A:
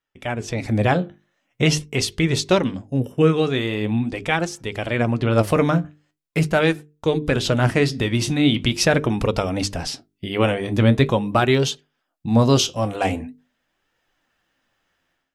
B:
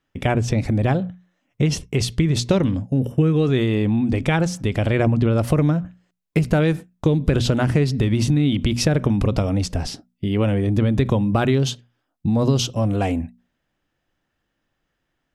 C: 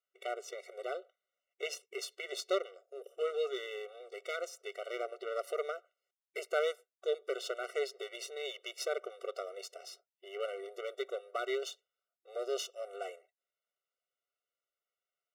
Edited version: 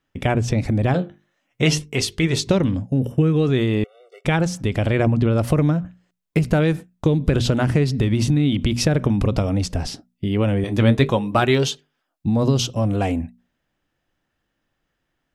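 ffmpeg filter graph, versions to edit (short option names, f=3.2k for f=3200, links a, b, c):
-filter_complex "[0:a]asplit=2[a][b];[1:a]asplit=4[c][d][e][f];[c]atrim=end=0.942[g];[a]atrim=start=0.938:end=2.472[h];[d]atrim=start=2.468:end=3.842[i];[2:a]atrim=start=3.838:end=4.252[j];[e]atrim=start=4.248:end=10.642[k];[b]atrim=start=10.638:end=12.262[l];[f]atrim=start=12.258[m];[g][h]acrossfade=d=0.004:c1=hsin:c2=hsin[n];[n][i]acrossfade=d=0.004:c1=hsin:c2=hsin[o];[o][j]acrossfade=d=0.004:c1=hsin:c2=hsin[p];[p][k]acrossfade=d=0.004:c1=hsin:c2=hsin[q];[q][l]acrossfade=d=0.004:c1=hsin:c2=hsin[r];[r][m]acrossfade=d=0.004:c1=hsin:c2=hsin"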